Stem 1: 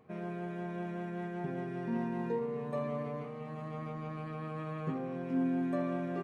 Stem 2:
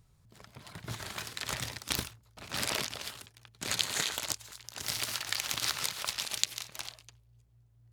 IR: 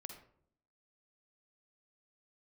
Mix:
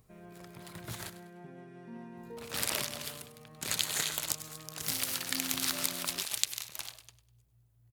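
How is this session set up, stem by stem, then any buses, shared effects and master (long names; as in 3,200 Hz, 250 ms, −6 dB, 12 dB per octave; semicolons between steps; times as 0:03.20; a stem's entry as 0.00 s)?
−12.0 dB, 0.00 s, no send, no echo send, no processing
−3.0 dB, 0.00 s, muted 0:01.10–0:02.17, no send, echo send −14 dB, parametric band 5,700 Hz −5.5 dB 1.6 octaves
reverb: not used
echo: repeating echo 100 ms, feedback 35%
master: high-shelf EQ 4,300 Hz +11 dB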